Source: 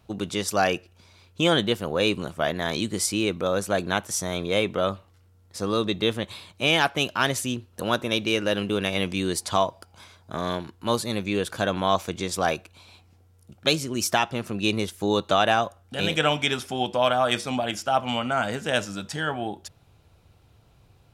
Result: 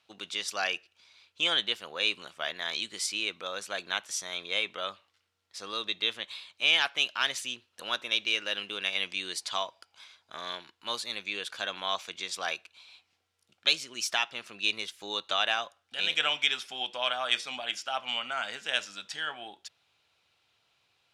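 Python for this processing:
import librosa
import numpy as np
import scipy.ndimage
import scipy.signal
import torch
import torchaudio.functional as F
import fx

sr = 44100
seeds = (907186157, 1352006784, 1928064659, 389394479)

y = fx.bandpass_q(x, sr, hz=3200.0, q=0.98)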